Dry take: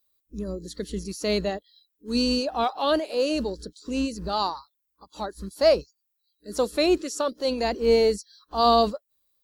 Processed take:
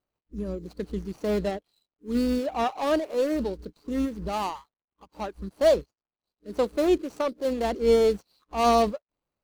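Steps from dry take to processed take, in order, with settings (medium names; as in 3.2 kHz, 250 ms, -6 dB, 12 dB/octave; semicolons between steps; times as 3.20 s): median filter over 25 samples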